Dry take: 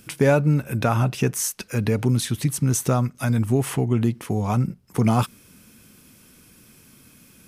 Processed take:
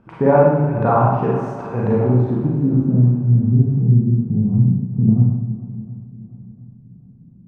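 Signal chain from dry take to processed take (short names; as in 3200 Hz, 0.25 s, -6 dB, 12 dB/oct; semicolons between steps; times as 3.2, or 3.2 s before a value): low-pass sweep 960 Hz -> 170 Hz, 1.89–3.06; on a send: swung echo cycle 0.706 s, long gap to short 1.5:1, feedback 33%, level -15.5 dB; on the sum: Schroeder reverb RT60 0.97 s, combs from 33 ms, DRR -5 dB; Doppler distortion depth 0.14 ms; gain -1.5 dB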